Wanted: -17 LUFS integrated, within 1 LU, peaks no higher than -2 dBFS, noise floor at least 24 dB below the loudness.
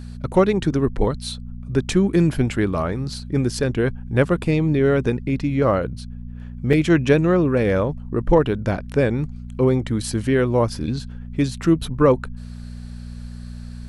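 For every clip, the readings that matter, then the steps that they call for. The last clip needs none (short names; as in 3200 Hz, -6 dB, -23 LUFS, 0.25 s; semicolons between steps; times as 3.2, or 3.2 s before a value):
dropouts 1; longest dropout 4.7 ms; hum 60 Hz; harmonics up to 240 Hz; hum level -31 dBFS; loudness -20.5 LUFS; peak -3.0 dBFS; loudness target -17.0 LUFS
-> interpolate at 6.73, 4.7 ms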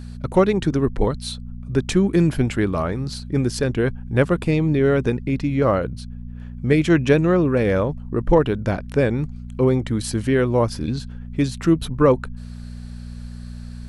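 dropouts 0; hum 60 Hz; harmonics up to 240 Hz; hum level -31 dBFS
-> de-hum 60 Hz, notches 4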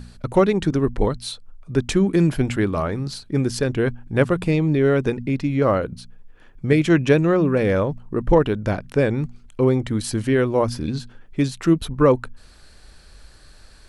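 hum none; loudness -20.5 LUFS; peak -3.5 dBFS; loudness target -17.0 LUFS
-> gain +3.5 dB; limiter -2 dBFS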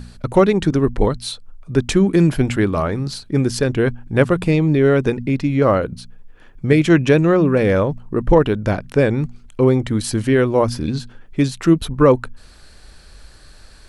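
loudness -17.5 LUFS; peak -2.0 dBFS; noise floor -44 dBFS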